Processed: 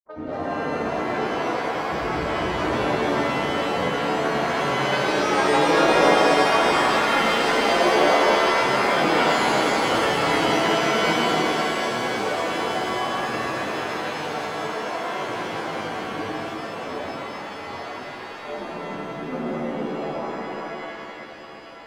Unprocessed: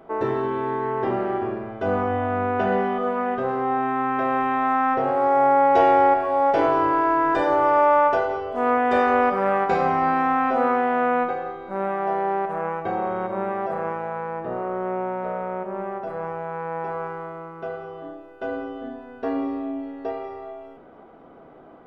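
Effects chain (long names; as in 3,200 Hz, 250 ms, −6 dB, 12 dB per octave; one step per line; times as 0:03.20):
adaptive Wiener filter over 25 samples
low-pass that shuts in the quiet parts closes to 1,200 Hz, open at −15.5 dBFS
granular cloud, pitch spread up and down by 12 semitones
on a send: delay with a high-pass on its return 1,021 ms, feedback 73%, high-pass 3,800 Hz, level −6 dB
on the sum: reverb with rising layers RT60 3.2 s, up +7 semitones, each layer −2 dB, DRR −7 dB
level −8.5 dB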